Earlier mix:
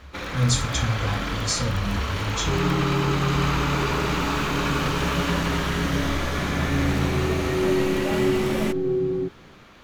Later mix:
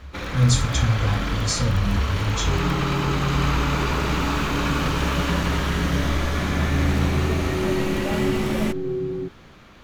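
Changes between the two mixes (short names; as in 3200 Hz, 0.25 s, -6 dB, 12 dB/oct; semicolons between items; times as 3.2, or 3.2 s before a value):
second sound -4.5 dB; master: add low shelf 190 Hz +6 dB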